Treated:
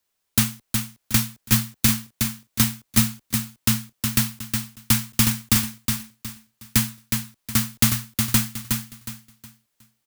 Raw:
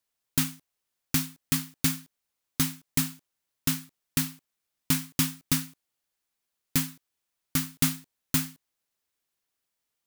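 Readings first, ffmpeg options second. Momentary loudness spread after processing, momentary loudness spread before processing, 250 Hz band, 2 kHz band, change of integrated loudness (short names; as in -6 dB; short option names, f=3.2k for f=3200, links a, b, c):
8 LU, 8 LU, +7.0 dB, +8.0 dB, +6.5 dB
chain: -af "aecho=1:1:365|730|1095|1460:0.562|0.169|0.0506|0.0152,afreqshift=-40,volume=6.5dB"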